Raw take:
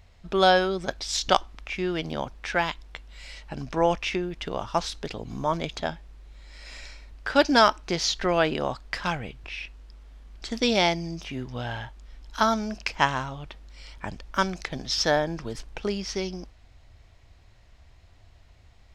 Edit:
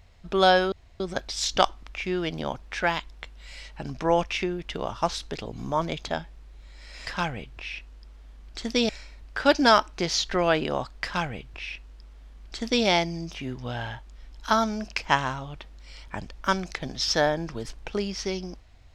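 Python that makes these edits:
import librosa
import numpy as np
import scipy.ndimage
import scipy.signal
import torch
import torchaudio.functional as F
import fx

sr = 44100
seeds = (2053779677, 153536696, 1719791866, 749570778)

y = fx.edit(x, sr, fx.insert_room_tone(at_s=0.72, length_s=0.28),
    fx.duplicate(start_s=8.94, length_s=1.82, to_s=6.79), tone=tone)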